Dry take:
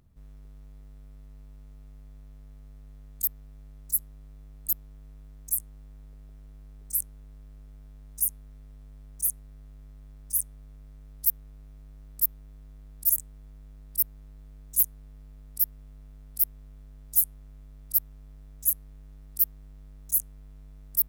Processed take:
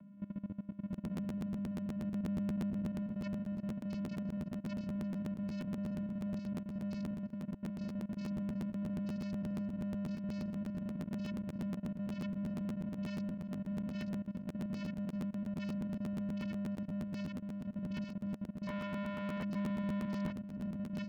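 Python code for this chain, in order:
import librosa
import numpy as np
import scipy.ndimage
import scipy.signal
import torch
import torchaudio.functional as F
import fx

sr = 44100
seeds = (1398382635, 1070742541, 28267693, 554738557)

y = x + 10.0 ** (-20.5 / 20.0) * np.pad(x, (int(345 * sr / 1000.0), 0))[:len(x)]
y = fx.vocoder(y, sr, bands=8, carrier='square', carrier_hz=201.0)
y = fx.low_shelf(y, sr, hz=220.0, db=9.5, at=(1.19, 2.0))
y = fx.schmitt(y, sr, flips_db=-58.5, at=(18.67, 19.43))
y = fx.level_steps(y, sr, step_db=18)
y = scipy.signal.sosfilt(scipy.signal.butter(4, 2900.0, 'lowpass', fs=sr, output='sos'), y)
y = y + 10.0 ** (-4.0 / 20.0) * np.pad(y, (int(879 * sr / 1000.0), 0))[:len(y)]
y = fx.buffer_crackle(y, sr, first_s=0.92, period_s=0.12, block=512, kind='repeat')
y = fx.band_widen(y, sr, depth_pct=100, at=(20.05, 20.6))
y = F.gain(torch.from_numpy(y), 17.0).numpy()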